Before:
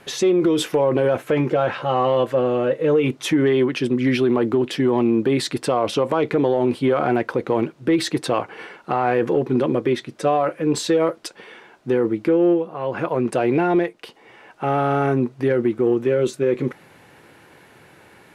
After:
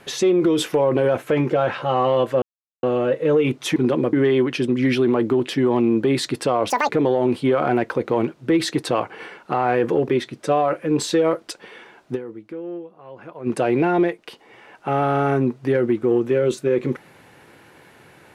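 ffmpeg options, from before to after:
-filter_complex "[0:a]asplit=9[s0][s1][s2][s3][s4][s5][s6][s7][s8];[s0]atrim=end=2.42,asetpts=PTS-STARTPTS,afade=t=out:st=2.416:d=0.004:c=hsin,apad=pad_dur=0.41[s9];[s1]atrim=start=2.42:end=3.352,asetpts=PTS-STARTPTS,afade=t=in:d=0.004:c=hsin[s10];[s2]atrim=start=9.468:end=9.842[s11];[s3]atrim=start=3.348:end=5.924[s12];[s4]atrim=start=5.92:end=6.28,asetpts=PTS-STARTPTS,asetrate=82467,aresample=44100[s13];[s5]atrim=start=6.276:end=9.472[s14];[s6]atrim=start=9.838:end=12.08,asetpts=PTS-STARTPTS,afade=t=out:st=2.062:d=0.18:c=exp:silence=0.177828[s15];[s7]atrim=start=12.08:end=13.05,asetpts=PTS-STARTPTS,volume=0.178[s16];[s8]atrim=start=13.05,asetpts=PTS-STARTPTS,afade=t=in:d=0.18:c=exp:silence=0.177828[s17];[s9][s10]concat=n=2:v=0:a=1[s18];[s18][s11]acrossfade=d=0.004:c1=hsin:c2=hsin[s19];[s19][s12]acrossfade=d=0.004:c1=hsin:c2=hsin[s20];[s20][s13]acrossfade=d=0.004:c1=hsin:c2=hsin[s21];[s21][s14]acrossfade=d=0.004:c1=hsin:c2=hsin[s22];[s15][s16][s17]concat=n=3:v=0:a=1[s23];[s22][s23]acrossfade=d=0.004:c1=hsin:c2=hsin"

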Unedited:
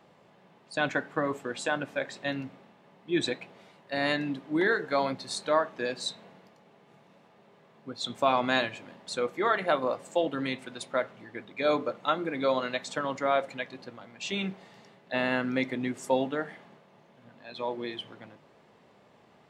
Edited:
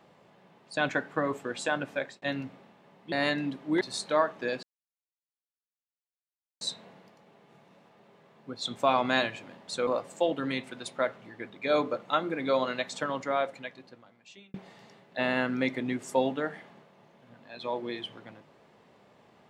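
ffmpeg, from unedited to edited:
-filter_complex "[0:a]asplit=7[s0][s1][s2][s3][s4][s5][s6];[s0]atrim=end=2.22,asetpts=PTS-STARTPTS,afade=t=out:st=1.92:d=0.3:c=qsin[s7];[s1]atrim=start=2.22:end=3.122,asetpts=PTS-STARTPTS,afade=t=in:d=0.004:c=hsin[s8];[s2]atrim=start=3.948:end=4.642[s9];[s3]atrim=start=5.178:end=6,asetpts=PTS-STARTPTS,afade=t=out:st=0.818:d=0.004:c=hsin,apad=pad_dur=1.98[s10];[s4]atrim=start=6:end=9.262,asetpts=PTS-STARTPTS,afade=t=in:d=0.004:c=hsin[s11];[s5]atrim=start=9.818:end=14.49,asetpts=PTS-STARTPTS,afade=t=out:st=3.132:d=1.54[s12];[s6]atrim=start=14.49,asetpts=PTS-STARTPTS,afade=t=in:d=0.004:c=hsin[s13];[s7][s8]concat=n=2:v=0:a=1[s14];[s14][s9]acrossfade=d=0.004:c1=hsin:c2=hsin[s15];[s10][s11]concat=n=2:v=0:a=1[s16];[s15][s16]acrossfade=d=0.004:c1=hsin:c2=hsin[s17];[s12][s13]concat=n=2:v=0:a=1[s18];[s17][s18]acrossfade=d=0.004:c1=hsin:c2=hsin"

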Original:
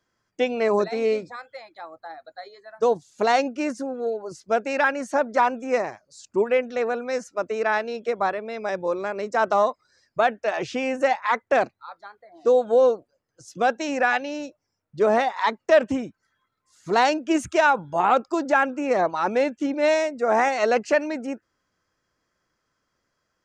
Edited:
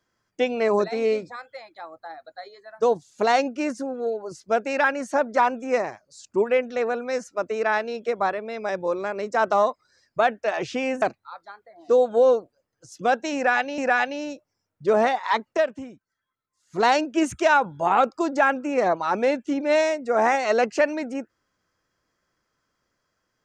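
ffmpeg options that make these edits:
-filter_complex "[0:a]asplit=5[s0][s1][s2][s3][s4];[s0]atrim=end=11.022[s5];[s1]atrim=start=11.578:end=14.342[s6];[s2]atrim=start=13.908:end=15.8,asetpts=PTS-STARTPTS,afade=t=out:st=1.742:d=0.15:silence=0.281838[s7];[s3]atrim=start=15.8:end=16.79,asetpts=PTS-STARTPTS,volume=0.282[s8];[s4]atrim=start=16.79,asetpts=PTS-STARTPTS,afade=t=in:d=0.15:silence=0.281838[s9];[s5][s6]acrossfade=d=0.004:c1=hsin:c2=hsin[s10];[s7][s8][s9]concat=n=3:v=0:a=1[s11];[s10][s11]acrossfade=d=0.004:c1=hsin:c2=hsin"

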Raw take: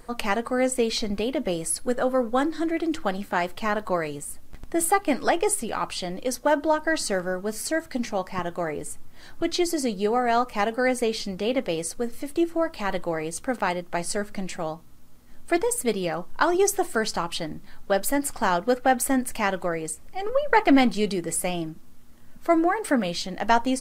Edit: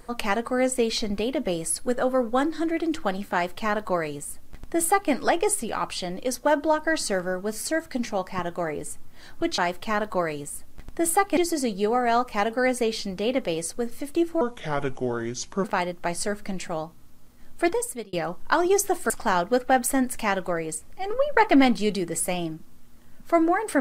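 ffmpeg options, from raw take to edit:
-filter_complex "[0:a]asplit=7[s0][s1][s2][s3][s4][s5][s6];[s0]atrim=end=9.582[s7];[s1]atrim=start=3.328:end=5.122[s8];[s2]atrim=start=9.578:end=12.624[s9];[s3]atrim=start=12.62:end=13.53,asetpts=PTS-STARTPTS,asetrate=32634,aresample=44100,atrim=end_sample=54231,asetpts=PTS-STARTPTS[s10];[s4]atrim=start=13.526:end=16.02,asetpts=PTS-STARTPTS,afade=t=out:st=2.064:d=0.43[s11];[s5]atrim=start=16.02:end=16.992,asetpts=PTS-STARTPTS,afade=t=in:d=0.004:c=hsin[s12];[s6]atrim=start=18.258[s13];[s7][s8]acrossfade=d=0.004:c1=hsin:c2=hsin[s14];[s14][s9]acrossfade=d=0.004:c1=hsin:c2=hsin[s15];[s15][s10]acrossfade=d=0.004:c1=hsin:c2=hsin[s16];[s11][s12]concat=n=2:v=0:a=1[s17];[s16][s17]acrossfade=d=0.004:c1=hsin:c2=hsin[s18];[s18][s13]acrossfade=d=0.004:c1=hsin:c2=hsin"

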